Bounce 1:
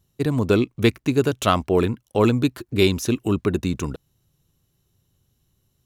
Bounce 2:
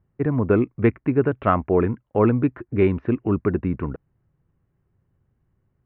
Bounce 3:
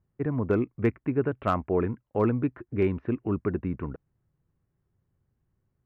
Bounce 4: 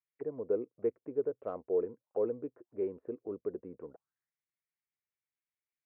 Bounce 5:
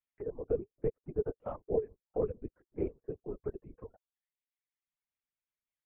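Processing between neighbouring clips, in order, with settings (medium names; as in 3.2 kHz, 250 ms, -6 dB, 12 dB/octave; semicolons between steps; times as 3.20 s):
steep low-pass 2.1 kHz 36 dB/octave
hard clipper -7.5 dBFS, distortion -32 dB; trim -6.5 dB
auto-wah 480–2300 Hz, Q 5.4, down, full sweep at -28 dBFS
LPC vocoder at 8 kHz whisper; reverb removal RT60 0.99 s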